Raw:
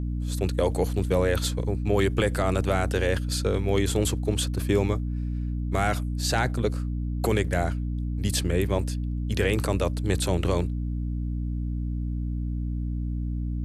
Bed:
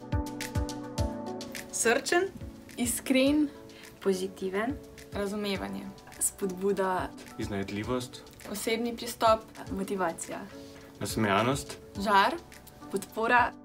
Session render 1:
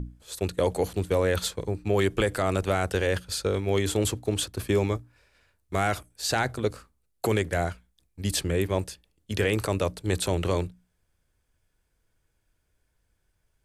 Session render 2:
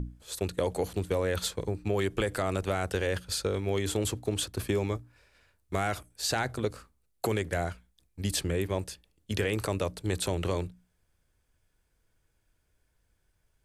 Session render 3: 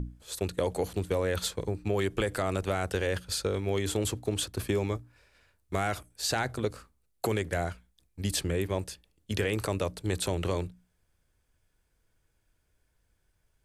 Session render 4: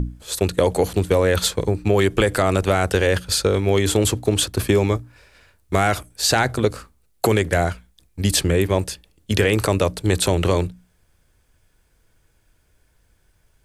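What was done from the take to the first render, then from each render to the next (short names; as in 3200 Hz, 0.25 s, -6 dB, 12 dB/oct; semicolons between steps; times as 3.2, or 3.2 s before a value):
notches 60/120/180/240/300 Hz
compressor 2:1, threshold -28 dBFS, peak gain reduction 5.5 dB
nothing audible
gain +11.5 dB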